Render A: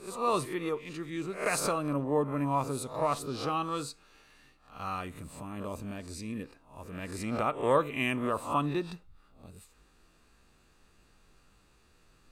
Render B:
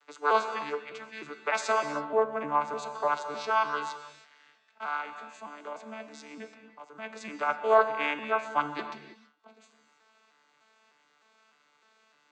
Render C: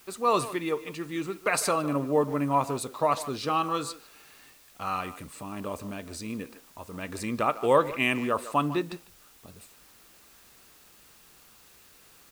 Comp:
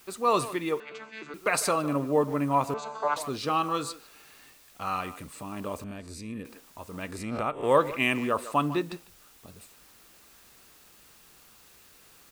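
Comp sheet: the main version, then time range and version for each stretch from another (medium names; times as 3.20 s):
C
0.80–1.34 s: from B
2.74–3.16 s: from B
5.84–6.45 s: from A
7.13–7.68 s: from A, crossfade 0.16 s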